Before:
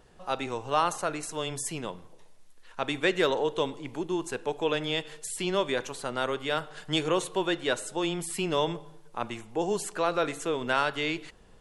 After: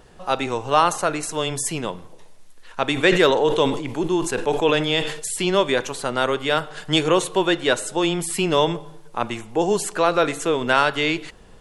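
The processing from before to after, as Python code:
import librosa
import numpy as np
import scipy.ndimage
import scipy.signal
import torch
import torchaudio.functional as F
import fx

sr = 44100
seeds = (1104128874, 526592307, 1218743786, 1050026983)

y = fx.sustainer(x, sr, db_per_s=69.0, at=(2.95, 5.33), fade=0.02)
y = F.gain(torch.from_numpy(y), 8.5).numpy()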